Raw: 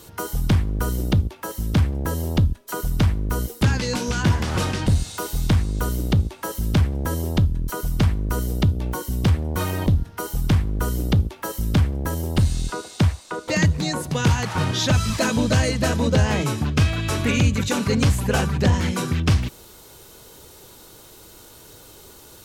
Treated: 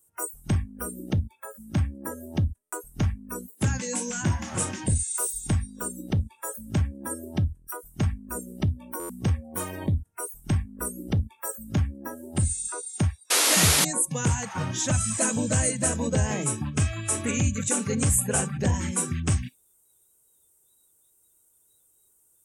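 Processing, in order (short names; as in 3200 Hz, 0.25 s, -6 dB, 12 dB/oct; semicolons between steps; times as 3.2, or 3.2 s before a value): resonant high shelf 6300 Hz +13.5 dB, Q 3; spectral noise reduction 26 dB; painted sound noise, 13.3–13.85, 240–12000 Hz -15 dBFS; stuck buffer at 2.62/8.99, samples 512, times 8; gain -6 dB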